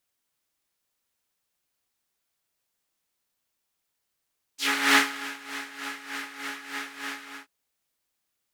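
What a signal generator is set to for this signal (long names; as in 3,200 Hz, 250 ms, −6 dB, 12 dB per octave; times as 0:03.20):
subtractive patch with tremolo C#4, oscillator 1 triangle, interval +7 semitones, detune 18 cents, sub −27.5 dB, noise 0 dB, filter bandpass, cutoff 1,500 Hz, Q 2, filter envelope 2 octaves, filter decay 0.10 s, filter sustain 10%, attack 271 ms, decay 0.35 s, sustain −18.5 dB, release 0.23 s, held 2.66 s, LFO 3.3 Hz, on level 12 dB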